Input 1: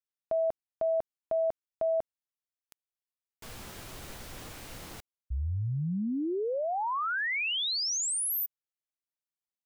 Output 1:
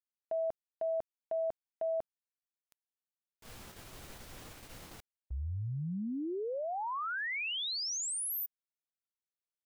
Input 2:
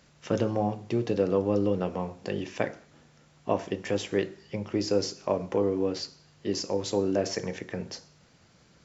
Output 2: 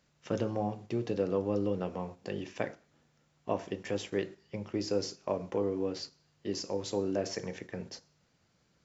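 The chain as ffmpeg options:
ffmpeg -i in.wav -af "agate=range=-6dB:threshold=-47dB:ratio=16:release=78:detection=peak,volume=-5.5dB" out.wav

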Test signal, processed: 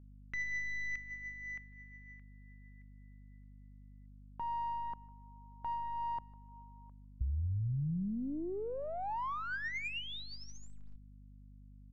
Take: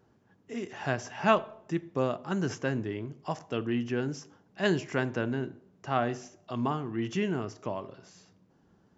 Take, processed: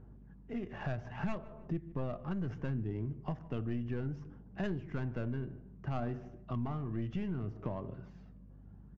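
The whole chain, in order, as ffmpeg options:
ffmpeg -i in.wav -filter_complex "[0:a]aeval=exprs='(tanh(5.01*val(0)+0.7)-tanh(0.7))/5.01':channel_layout=same,aphaser=in_gain=1:out_gain=1:delay=1.8:decay=0.33:speed=0.65:type=sinusoidal,bass=frequency=250:gain=11,treble=frequency=4000:gain=-8,adynamicsmooth=sensitivity=7:basefreq=2500,asplit=2[link_01][link_02];[link_02]adelay=151,lowpass=frequency=2300:poles=1,volume=-23dB,asplit=2[link_03][link_04];[link_04]adelay=151,lowpass=frequency=2300:poles=1,volume=0.26[link_05];[link_01][link_03][link_05]amix=inputs=3:normalize=0,acompressor=threshold=-36dB:ratio=4,aeval=exprs='val(0)+0.00178*(sin(2*PI*50*n/s)+sin(2*PI*2*50*n/s)/2+sin(2*PI*3*50*n/s)/3+sin(2*PI*4*50*n/s)/4+sin(2*PI*5*50*n/s)/5)':channel_layout=same,aresample=16000,aresample=44100,volume=1dB" out.wav

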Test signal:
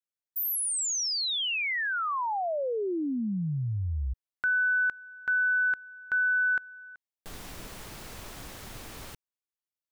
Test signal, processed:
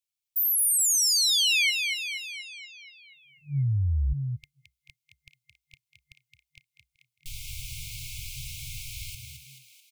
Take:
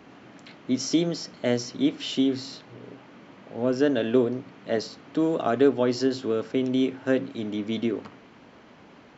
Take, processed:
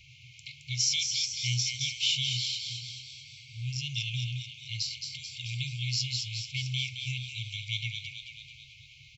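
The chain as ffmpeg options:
ffmpeg -i in.wav -filter_complex "[0:a]asplit=9[link_01][link_02][link_03][link_04][link_05][link_06][link_07][link_08][link_09];[link_02]adelay=218,afreqshift=60,volume=-5.5dB[link_10];[link_03]adelay=436,afreqshift=120,volume=-10.4dB[link_11];[link_04]adelay=654,afreqshift=180,volume=-15.3dB[link_12];[link_05]adelay=872,afreqshift=240,volume=-20.1dB[link_13];[link_06]adelay=1090,afreqshift=300,volume=-25dB[link_14];[link_07]adelay=1308,afreqshift=360,volume=-29.9dB[link_15];[link_08]adelay=1526,afreqshift=420,volume=-34.8dB[link_16];[link_09]adelay=1744,afreqshift=480,volume=-39.7dB[link_17];[link_01][link_10][link_11][link_12][link_13][link_14][link_15][link_16][link_17]amix=inputs=9:normalize=0,afftfilt=real='re*(1-between(b*sr/4096,140,2100))':imag='im*(1-between(b*sr/4096,140,2100))':win_size=4096:overlap=0.75,volume=5.5dB" out.wav

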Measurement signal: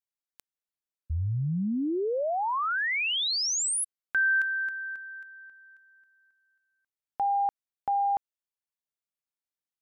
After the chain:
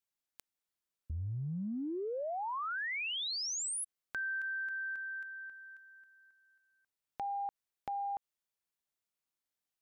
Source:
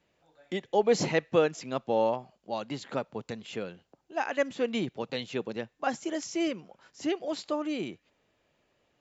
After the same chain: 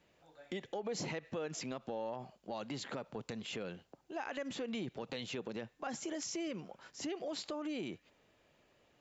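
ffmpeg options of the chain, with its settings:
ffmpeg -i in.wav -af "acompressor=threshold=-39dB:ratio=6:attack=2.5:release=49:knee=6:detection=rms,volume=2dB" out.wav

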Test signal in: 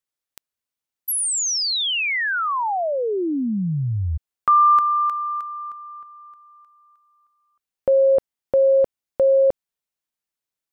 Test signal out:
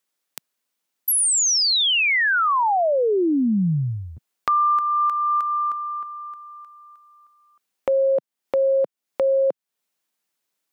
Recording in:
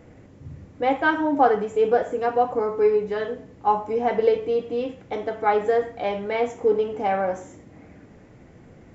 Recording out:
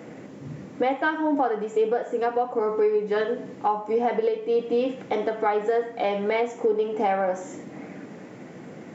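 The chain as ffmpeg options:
ffmpeg -i in.wav -af "highpass=frequency=160:width=0.5412,highpass=frequency=160:width=1.3066,acompressor=threshold=-26dB:ratio=8:attack=1.1:release=790:knee=1:detection=peak,volume=9dB" out.wav

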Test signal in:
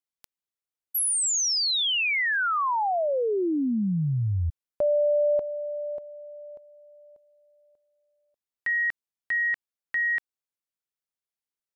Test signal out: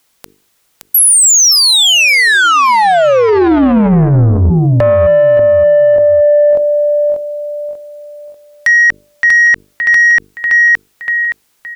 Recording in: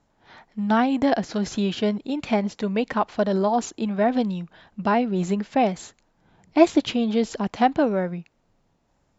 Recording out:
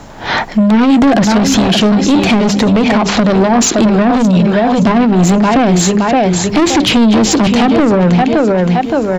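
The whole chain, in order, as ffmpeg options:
ffmpeg -i in.wav -filter_complex "[0:a]asplit=2[link_01][link_02];[link_02]acompressor=threshold=-34dB:ratio=6:release=266:detection=rms,volume=-3dB[link_03];[link_01][link_03]amix=inputs=2:normalize=0,aecho=1:1:569|1138|1707:0.316|0.0885|0.0248,acrossover=split=360[link_04][link_05];[link_05]acompressor=threshold=-31dB:ratio=4:attack=16:release=55:knee=2.83:detection=peak[link_06];[link_04][link_06]amix=inputs=2:normalize=0,asoftclip=type=tanh:threshold=-25.5dB,bandreject=frequency=50:width_type=h:width=6,bandreject=frequency=100:width_type=h:width=6,bandreject=frequency=150:width_type=h:width=6,bandreject=frequency=200:width_type=h:width=6,bandreject=frequency=250:width_type=h:width=6,bandreject=frequency=300:width_type=h:width=6,bandreject=frequency=350:width_type=h:width=6,bandreject=frequency=400:width_type=h:width=6,bandreject=frequency=450:width_type=h:width=6,alimiter=level_in=33.5dB:limit=-1dB:release=50:level=0:latency=1,volume=-3.5dB" out.wav

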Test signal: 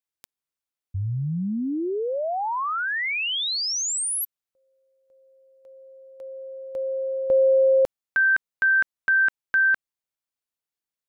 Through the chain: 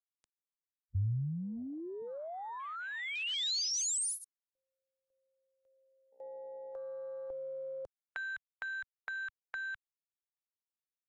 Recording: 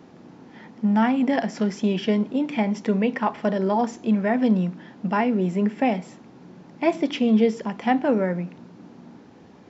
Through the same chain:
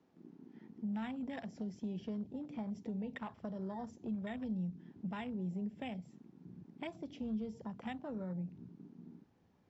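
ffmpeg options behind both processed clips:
ffmpeg -i in.wav -filter_complex "[0:a]afwtdn=0.0282,asubboost=boost=3:cutoff=140,acrossover=split=130|3200[link_01][link_02][link_03];[link_02]acompressor=threshold=-34dB:ratio=10:attack=5.1:release=402:knee=2.83:detection=peak[link_04];[link_01][link_04][link_03]amix=inputs=3:normalize=0,volume=-6.5dB" -ar 22050 -c:a aac -b:a 64k out.aac

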